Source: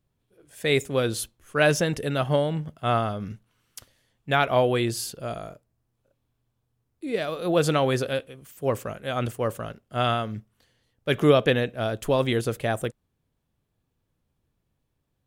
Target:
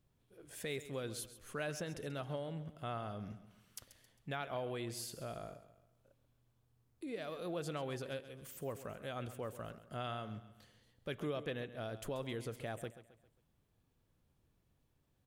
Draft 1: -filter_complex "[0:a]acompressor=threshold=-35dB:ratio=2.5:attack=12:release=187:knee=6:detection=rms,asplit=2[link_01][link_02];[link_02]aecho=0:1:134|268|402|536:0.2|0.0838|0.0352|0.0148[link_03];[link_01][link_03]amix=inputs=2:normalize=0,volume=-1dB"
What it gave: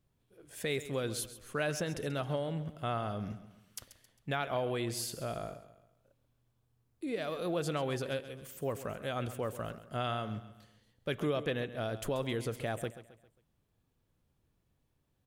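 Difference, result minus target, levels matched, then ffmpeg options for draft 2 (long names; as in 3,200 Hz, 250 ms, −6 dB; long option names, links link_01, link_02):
downward compressor: peak gain reduction −7 dB
-filter_complex "[0:a]acompressor=threshold=-46.5dB:ratio=2.5:attack=12:release=187:knee=6:detection=rms,asplit=2[link_01][link_02];[link_02]aecho=0:1:134|268|402|536:0.2|0.0838|0.0352|0.0148[link_03];[link_01][link_03]amix=inputs=2:normalize=0,volume=-1dB"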